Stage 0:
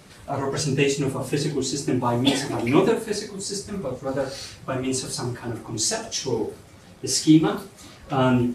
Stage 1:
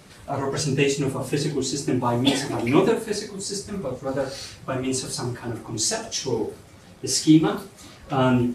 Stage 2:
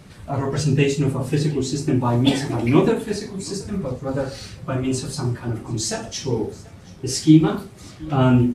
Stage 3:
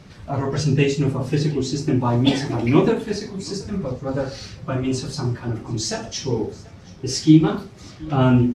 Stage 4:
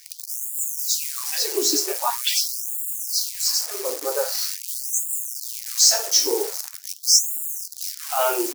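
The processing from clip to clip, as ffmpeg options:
ffmpeg -i in.wav -af anull out.wav
ffmpeg -i in.wav -af "bass=frequency=250:gain=8,treble=frequency=4000:gain=-3,aecho=1:1:727:0.0708" out.wav
ffmpeg -i in.wav -af "firequalizer=gain_entry='entry(3900,0);entry(5500,2);entry(8900,-10)':delay=0.05:min_phase=1" out.wav
ffmpeg -i in.wav -af "acrusher=bits=7:dc=4:mix=0:aa=0.000001,aexciter=amount=4.3:drive=5.7:freq=4600,afftfilt=real='re*gte(b*sr/1024,290*pow(6900/290,0.5+0.5*sin(2*PI*0.44*pts/sr)))':imag='im*gte(b*sr/1024,290*pow(6900/290,0.5+0.5*sin(2*PI*0.44*pts/sr)))':win_size=1024:overlap=0.75,volume=1.5dB" out.wav

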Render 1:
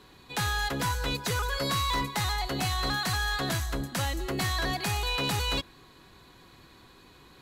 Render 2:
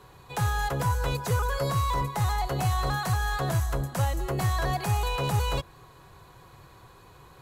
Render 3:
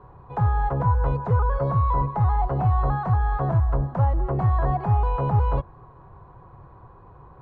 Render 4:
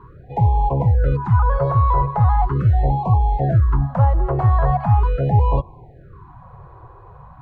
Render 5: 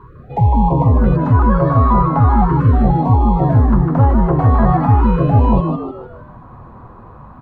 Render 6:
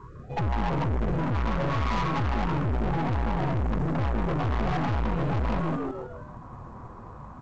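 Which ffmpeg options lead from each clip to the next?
ffmpeg -i in.wav -filter_complex "[0:a]equalizer=frequency=125:width_type=o:width=1:gain=7,equalizer=frequency=250:width_type=o:width=1:gain=-12,equalizer=frequency=500:width_type=o:width=1:gain=3,equalizer=frequency=1000:width_type=o:width=1:gain=3,equalizer=frequency=2000:width_type=o:width=1:gain=-4,equalizer=frequency=4000:width_type=o:width=1:gain=-8,acrossover=split=740[link_01][link_02];[link_02]alimiter=level_in=4dB:limit=-24dB:level=0:latency=1:release=238,volume=-4dB[link_03];[link_01][link_03]amix=inputs=2:normalize=0,volume=3.5dB" out.wav
ffmpeg -i in.wav -af "lowpass=frequency=1000:width_type=q:width=1.6,lowshelf=frequency=180:gain=8" out.wav
ffmpeg -i in.wav -af "afftfilt=real='re*(1-between(b*sr/1024,210*pow(1600/210,0.5+0.5*sin(2*PI*0.4*pts/sr))/1.41,210*pow(1600/210,0.5+0.5*sin(2*PI*0.4*pts/sr))*1.41))':imag='im*(1-between(b*sr/1024,210*pow(1600/210,0.5+0.5*sin(2*PI*0.4*pts/sr))/1.41,210*pow(1600/210,0.5+0.5*sin(2*PI*0.4*pts/sr))*1.41))':win_size=1024:overlap=0.75,volume=5.5dB" out.wav
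ffmpeg -i in.wav -filter_complex "[0:a]asplit=6[link_01][link_02][link_03][link_04][link_05][link_06];[link_02]adelay=152,afreqshift=110,volume=-6dB[link_07];[link_03]adelay=304,afreqshift=220,volume=-13.3dB[link_08];[link_04]adelay=456,afreqshift=330,volume=-20.7dB[link_09];[link_05]adelay=608,afreqshift=440,volume=-28dB[link_10];[link_06]adelay=760,afreqshift=550,volume=-35.3dB[link_11];[link_01][link_07][link_08][link_09][link_10][link_11]amix=inputs=6:normalize=0,volume=3dB" out.wav
ffmpeg -i in.wav -af "aeval=exprs='(tanh(12.6*val(0)+0.45)-tanh(0.45))/12.6':channel_layout=same,volume=-3dB" -ar 16000 -c:a pcm_alaw out.wav

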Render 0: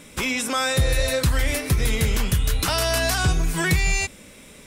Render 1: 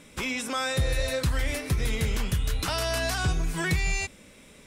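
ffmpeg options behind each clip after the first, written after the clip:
ffmpeg -i in.wav -af "highshelf=frequency=10000:gain=-7.5,volume=-5.5dB" out.wav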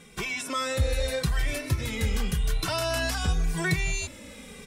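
ffmpeg -i in.wav -filter_complex "[0:a]areverse,acompressor=mode=upward:threshold=-35dB:ratio=2.5,areverse,asplit=2[link_01][link_02];[link_02]adelay=2.1,afreqshift=-0.87[link_03];[link_01][link_03]amix=inputs=2:normalize=1,volume=2.5dB" out.wav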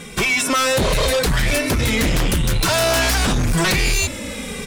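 ffmpeg -i in.wav -af "aeval=exprs='0.2*sin(PI/2*3.98*val(0)/0.2)':channel_layout=same" out.wav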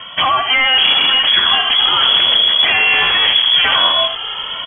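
ffmpeg -i in.wav -af "lowpass=frequency=2900:width_type=q:width=0.5098,lowpass=frequency=2900:width_type=q:width=0.6013,lowpass=frequency=2900:width_type=q:width=0.9,lowpass=frequency=2900:width_type=q:width=2.563,afreqshift=-3400,aecho=1:1:82:0.355,volume=5dB" out.wav

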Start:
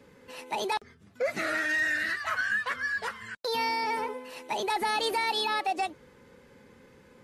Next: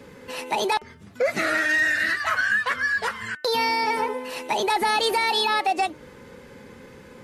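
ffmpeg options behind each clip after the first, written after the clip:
ffmpeg -i in.wav -filter_complex "[0:a]bandreject=frequency=301.2:width_type=h:width=4,bandreject=frequency=602.4:width_type=h:width=4,bandreject=frequency=903.6:width_type=h:width=4,bandreject=frequency=1204.8:width_type=h:width=4,bandreject=frequency=1506:width_type=h:width=4,bandreject=frequency=1807.2:width_type=h:width=4,bandreject=frequency=2108.4:width_type=h:width=4,bandreject=frequency=2409.6:width_type=h:width=4,bandreject=frequency=2710.8:width_type=h:width=4,bandreject=frequency=3012:width_type=h:width=4,asplit=2[link_01][link_02];[link_02]acompressor=threshold=-37dB:ratio=6,volume=1dB[link_03];[link_01][link_03]amix=inputs=2:normalize=0,volume=4dB" out.wav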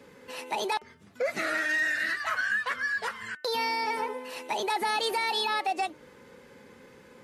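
ffmpeg -i in.wav -af "lowshelf=frequency=130:gain=-10,volume=-6dB" out.wav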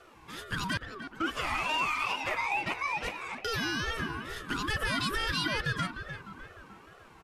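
ffmpeg -i in.wav -filter_complex "[0:a]asplit=2[link_01][link_02];[link_02]adelay=302,lowpass=frequency=2000:poles=1,volume=-8.5dB,asplit=2[link_03][link_04];[link_04]adelay=302,lowpass=frequency=2000:poles=1,volume=0.54,asplit=2[link_05][link_06];[link_06]adelay=302,lowpass=frequency=2000:poles=1,volume=0.54,asplit=2[link_07][link_08];[link_08]adelay=302,lowpass=frequency=2000:poles=1,volume=0.54,asplit=2[link_09][link_10];[link_10]adelay=302,lowpass=frequency=2000:poles=1,volume=0.54,asplit=2[link_11][link_12];[link_12]adelay=302,lowpass=frequency=2000:poles=1,volume=0.54[link_13];[link_01][link_03][link_05][link_07][link_09][link_11][link_13]amix=inputs=7:normalize=0,aeval=exprs='val(0)*sin(2*PI*750*n/s+750*0.25/2.3*sin(2*PI*2.3*n/s))':channel_layout=same" out.wav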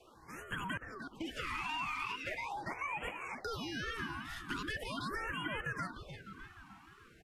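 ffmpeg -i in.wav -filter_complex "[0:a]acrossover=split=220|3000[link_01][link_02][link_03];[link_01]acompressor=threshold=-43dB:ratio=4[link_04];[link_02]acompressor=threshold=-32dB:ratio=4[link_05];[link_03]acompressor=threshold=-47dB:ratio=4[link_06];[link_04][link_05][link_06]amix=inputs=3:normalize=0,afftfilt=real='re*(1-between(b*sr/1024,460*pow(4800/460,0.5+0.5*sin(2*PI*0.41*pts/sr))/1.41,460*pow(4800/460,0.5+0.5*sin(2*PI*0.41*pts/sr))*1.41))':imag='im*(1-between(b*sr/1024,460*pow(4800/460,0.5+0.5*sin(2*PI*0.41*pts/sr))/1.41,460*pow(4800/460,0.5+0.5*sin(2*PI*0.41*pts/sr))*1.41))':win_size=1024:overlap=0.75,volume=-4dB" out.wav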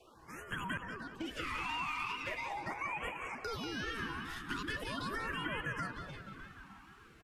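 ffmpeg -i in.wav -filter_complex "[0:a]asplit=2[link_01][link_02];[link_02]adelay=189,lowpass=frequency=4000:poles=1,volume=-8dB,asplit=2[link_03][link_04];[link_04]adelay=189,lowpass=frequency=4000:poles=1,volume=0.42,asplit=2[link_05][link_06];[link_06]adelay=189,lowpass=frequency=4000:poles=1,volume=0.42,asplit=2[link_07][link_08];[link_08]adelay=189,lowpass=frequency=4000:poles=1,volume=0.42,asplit=2[link_09][link_10];[link_10]adelay=189,lowpass=frequency=4000:poles=1,volume=0.42[link_11];[link_01][link_03][link_05][link_07][link_09][link_11]amix=inputs=6:normalize=0" out.wav

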